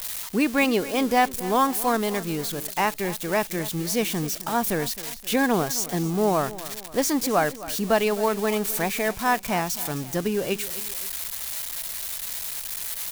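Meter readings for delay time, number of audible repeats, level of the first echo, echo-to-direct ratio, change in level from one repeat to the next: 0.263 s, 2, -16.5 dB, -15.5 dB, -6.0 dB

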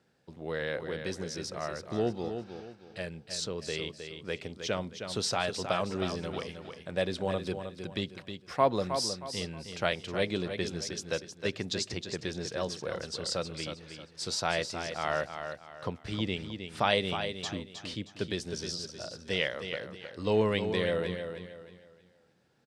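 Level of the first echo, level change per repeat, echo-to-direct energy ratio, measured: -8.0 dB, -9.5 dB, -7.5 dB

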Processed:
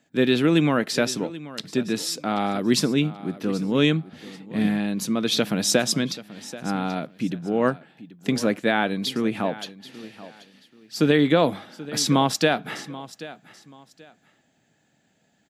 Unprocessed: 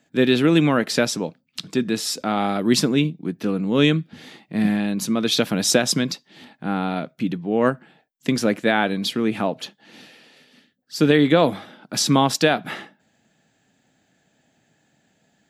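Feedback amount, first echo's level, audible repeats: 26%, -17.0 dB, 2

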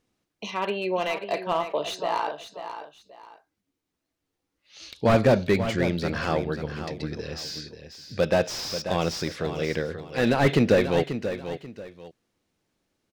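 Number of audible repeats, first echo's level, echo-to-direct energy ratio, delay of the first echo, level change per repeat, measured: 2, -10.0 dB, -9.5 dB, 0.537 s, -10.5 dB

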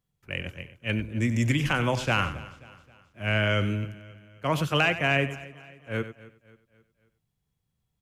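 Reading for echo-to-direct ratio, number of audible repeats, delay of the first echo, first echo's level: -11.5 dB, 5, 94 ms, -12.5 dB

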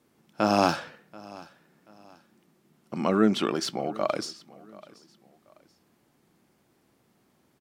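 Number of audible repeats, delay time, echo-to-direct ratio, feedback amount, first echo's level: 2, 0.733 s, -21.0 dB, 33%, -21.5 dB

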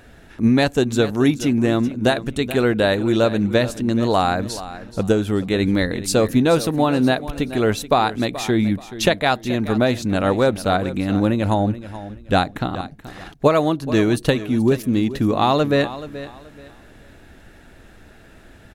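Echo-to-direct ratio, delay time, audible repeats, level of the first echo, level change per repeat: -14.0 dB, 0.429 s, 2, -14.5 dB, -11.5 dB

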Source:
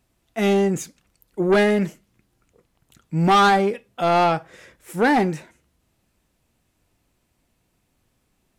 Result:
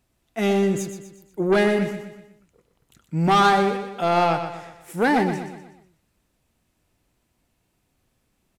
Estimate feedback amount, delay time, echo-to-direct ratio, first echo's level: 45%, 0.122 s, -8.0 dB, -9.0 dB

